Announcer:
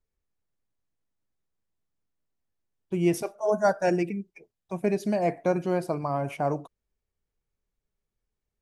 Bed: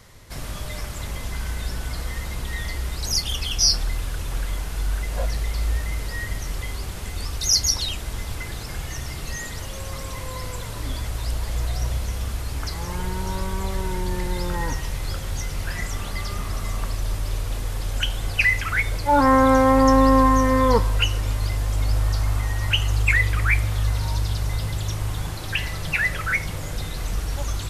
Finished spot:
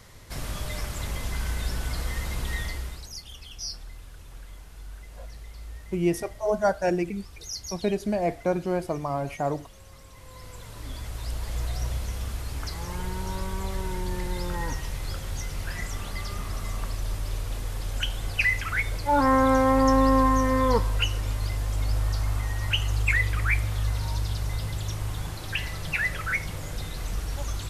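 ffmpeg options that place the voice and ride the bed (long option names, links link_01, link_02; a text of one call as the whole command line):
ffmpeg -i stem1.wav -i stem2.wav -filter_complex "[0:a]adelay=3000,volume=-0.5dB[link_01];[1:a]volume=11.5dB,afade=type=out:start_time=2.53:duration=0.56:silence=0.158489,afade=type=in:start_time=10.13:duration=1.47:silence=0.237137[link_02];[link_01][link_02]amix=inputs=2:normalize=0" out.wav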